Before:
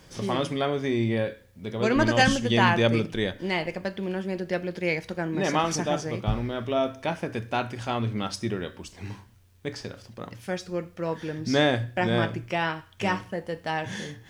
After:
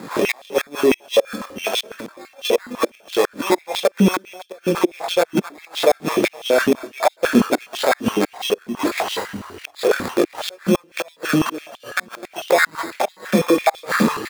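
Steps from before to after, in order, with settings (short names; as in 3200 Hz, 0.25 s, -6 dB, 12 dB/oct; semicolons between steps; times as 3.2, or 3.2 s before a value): recorder AGC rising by 7.4 dB/s; Bessel low-pass 6100 Hz, order 2; in parallel at -2 dB: compressor 12:1, threshold -32 dBFS, peak gain reduction 17.5 dB; on the sum: sample-and-hold 15×; chorus voices 4, 0.24 Hz, delay 22 ms, depth 2.6 ms; flipped gate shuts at -16 dBFS, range -37 dB; on a send: echo 0.256 s -23 dB; on the sum: maximiser +25 dB; stepped high-pass 12 Hz 230–3300 Hz; gain -9.5 dB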